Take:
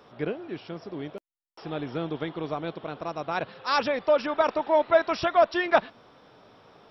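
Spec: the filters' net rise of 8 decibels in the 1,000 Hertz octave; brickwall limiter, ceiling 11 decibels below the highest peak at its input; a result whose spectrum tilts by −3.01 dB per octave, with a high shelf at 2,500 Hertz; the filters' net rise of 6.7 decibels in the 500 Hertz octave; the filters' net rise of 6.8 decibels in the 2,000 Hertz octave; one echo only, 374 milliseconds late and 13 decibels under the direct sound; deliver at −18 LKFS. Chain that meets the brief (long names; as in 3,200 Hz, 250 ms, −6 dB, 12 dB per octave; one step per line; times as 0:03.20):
parametric band 500 Hz +5.5 dB
parametric band 1,000 Hz +7.5 dB
parametric band 2,000 Hz +7 dB
high-shelf EQ 2,500 Hz −3.5 dB
brickwall limiter −10.5 dBFS
single-tap delay 374 ms −13 dB
level +5.5 dB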